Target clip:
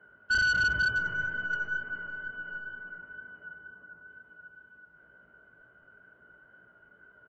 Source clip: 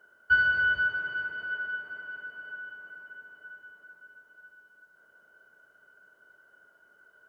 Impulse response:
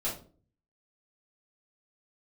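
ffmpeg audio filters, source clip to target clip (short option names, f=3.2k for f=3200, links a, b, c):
-filter_complex "[0:a]lowpass=f=2.8k:w=0.5412,lowpass=f=2.8k:w=1.3066,asettb=1/sr,asplit=3[a][b][c];[a]atrim=end=0.964[d];[b]atrim=start=0.96:end=2.98,asetpts=PTS-STARTPTS,afade=t=in:d=0.004:c=qsin,afade=t=out:st=2.016:d=0.004:c=qsin,aeval=exprs='0.0596*(cos(1*acos(clip(val(0)/0.0596,-1,1)))-cos(1*PI/2))+0.00133*(cos(3*acos(clip(val(0)/0.0596,-1,1)))-cos(3*PI/2))+0.000841*(cos(5*acos(clip(val(0)/0.0596,-1,1)))-cos(5*PI/2))+0.00075*(cos(6*acos(clip(val(0)/0.0596,-1,1)))-cos(6*PI/2))+0.000473*(cos(7*acos(clip(val(0)/0.0596,-1,1)))-cos(7*PI/2))':c=same[e];[c]atrim=start=2.976[f];[d][e]acrossfade=d=0.004:c1=hsin:c2=qsin[g];[g][f]acrossfade=d=0.004:c1=qsin:c2=hsin,asettb=1/sr,asplit=3[h][i][j];[h]atrim=end=3.614[k];[i]atrim=start=3.61:end=4.06,asetpts=PTS-STARTPTS,afade=t=in:d=0.004:c=qsin,afade=t=out:st=0.446:d=0.004:c=qsin,aemphasis=mode=reproduction:type=75fm[l];[j]atrim=start=4.056[m];[k][l]acrossfade=d=0.004:c1=hsin:c2=qsin[n];[n][m]acrossfade=d=0.004:c1=qsin:c2=hsin,acrossover=split=230|2100[o][p][q];[o]aeval=exprs='0.0133*sin(PI/2*2.82*val(0)/0.0133)':c=same[r];[r][p][q]amix=inputs=3:normalize=0,flanger=delay=16:depth=3.3:speed=2.1,volume=28dB,asoftclip=hard,volume=-28dB,asplit=2[s][t];[t]adelay=145,lowpass=f=1.9k:p=1,volume=-19dB,asplit=2[u][v];[v]adelay=145,lowpass=f=1.9k:p=1,volume=0.23[w];[u][w]amix=inputs=2:normalize=0[x];[s][x]amix=inputs=2:normalize=0,volume=5dB" -ar 16000 -c:a libvorbis -b:a 64k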